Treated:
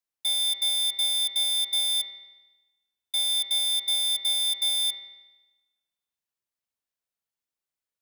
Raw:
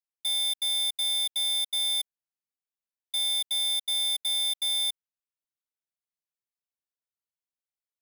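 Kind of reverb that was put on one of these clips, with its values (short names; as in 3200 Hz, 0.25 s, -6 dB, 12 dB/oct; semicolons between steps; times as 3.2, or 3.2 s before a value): spring tank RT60 1.1 s, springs 45 ms, chirp 50 ms, DRR 6.5 dB; gain +2.5 dB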